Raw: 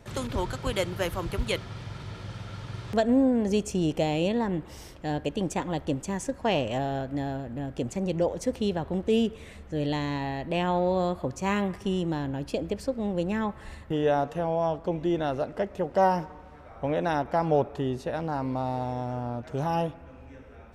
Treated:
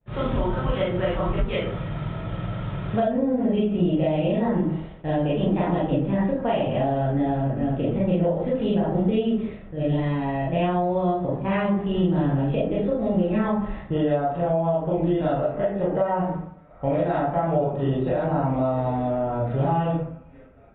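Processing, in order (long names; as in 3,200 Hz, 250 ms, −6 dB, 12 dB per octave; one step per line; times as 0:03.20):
0:09.71–0:11.93: output level in coarse steps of 9 dB
downward expander −38 dBFS
comb and all-pass reverb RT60 0.5 s, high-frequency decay 0.5×, pre-delay 0 ms, DRR −9.5 dB
downward compressor 6 to 1, threshold −20 dBFS, peak gain reduction 12.5 dB
parametric band 150 Hz +7 dB 0.82 octaves
downsampling to 8,000 Hz
high-shelf EQ 2,500 Hz −9.5 dB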